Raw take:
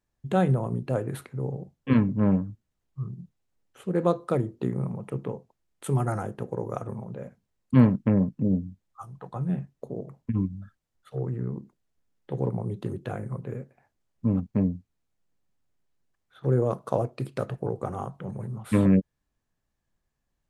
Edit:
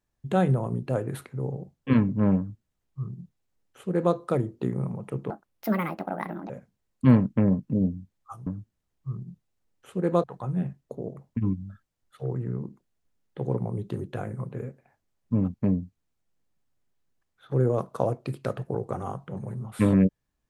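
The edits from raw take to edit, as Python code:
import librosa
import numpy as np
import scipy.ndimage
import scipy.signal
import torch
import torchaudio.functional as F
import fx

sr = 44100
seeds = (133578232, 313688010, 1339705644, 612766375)

y = fx.edit(x, sr, fx.duplicate(start_s=2.38, length_s=1.77, to_s=9.16),
    fx.speed_span(start_s=5.3, length_s=1.89, speed=1.58), tone=tone)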